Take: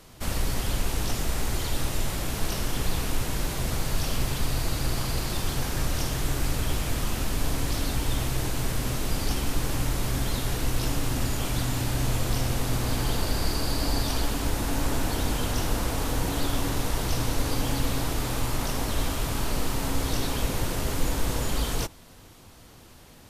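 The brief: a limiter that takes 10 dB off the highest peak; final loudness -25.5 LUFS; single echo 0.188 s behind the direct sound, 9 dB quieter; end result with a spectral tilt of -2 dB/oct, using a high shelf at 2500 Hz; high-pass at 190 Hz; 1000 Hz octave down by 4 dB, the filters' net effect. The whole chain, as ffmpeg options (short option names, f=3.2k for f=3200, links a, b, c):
-af "highpass=190,equalizer=f=1k:t=o:g=-6.5,highshelf=f=2.5k:g=7,alimiter=level_in=1dB:limit=-24dB:level=0:latency=1,volume=-1dB,aecho=1:1:188:0.355,volume=6.5dB"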